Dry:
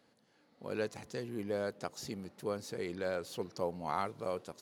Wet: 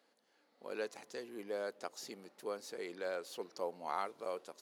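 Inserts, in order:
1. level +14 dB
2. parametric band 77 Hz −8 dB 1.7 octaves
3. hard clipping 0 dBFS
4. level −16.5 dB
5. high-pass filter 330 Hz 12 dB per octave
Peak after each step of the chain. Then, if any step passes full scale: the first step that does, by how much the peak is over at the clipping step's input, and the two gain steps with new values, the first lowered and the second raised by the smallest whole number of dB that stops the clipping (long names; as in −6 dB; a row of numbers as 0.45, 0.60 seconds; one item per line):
−5.5, −6.0, −6.0, −22.5, −23.0 dBFS
no step passes full scale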